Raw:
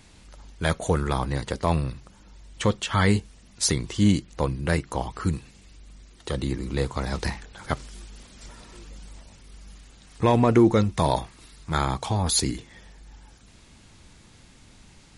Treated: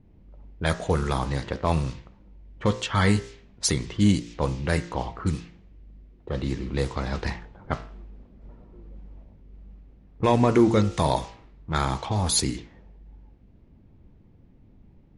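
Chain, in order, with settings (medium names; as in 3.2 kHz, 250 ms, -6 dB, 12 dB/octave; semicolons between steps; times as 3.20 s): de-hum 57.44 Hz, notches 36; band noise 1.9–7.2 kHz -51 dBFS; level-controlled noise filter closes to 370 Hz, open at -20.5 dBFS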